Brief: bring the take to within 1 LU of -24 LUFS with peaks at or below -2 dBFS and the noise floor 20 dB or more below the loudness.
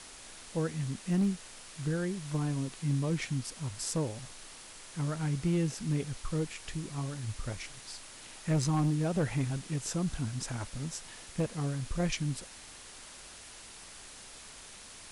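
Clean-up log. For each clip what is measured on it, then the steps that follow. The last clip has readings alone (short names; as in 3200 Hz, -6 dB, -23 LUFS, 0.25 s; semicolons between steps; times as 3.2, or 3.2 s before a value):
clipped 0.6%; flat tops at -23.0 dBFS; noise floor -50 dBFS; noise floor target -54 dBFS; loudness -34.0 LUFS; peak -23.0 dBFS; loudness target -24.0 LUFS
-> clip repair -23 dBFS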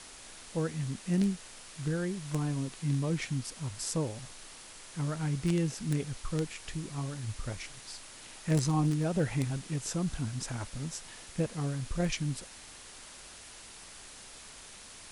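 clipped 0.0%; noise floor -50 dBFS; noise floor target -54 dBFS
-> denoiser 6 dB, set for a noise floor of -50 dBFS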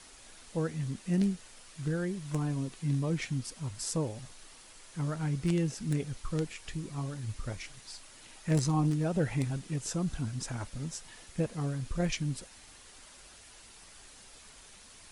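noise floor -54 dBFS; loudness -34.0 LUFS; peak -14.5 dBFS; loudness target -24.0 LUFS
-> gain +10 dB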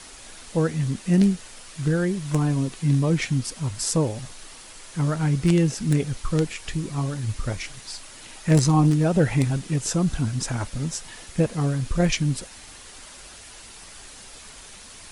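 loudness -24.0 LUFS; peak -4.5 dBFS; noise floor -44 dBFS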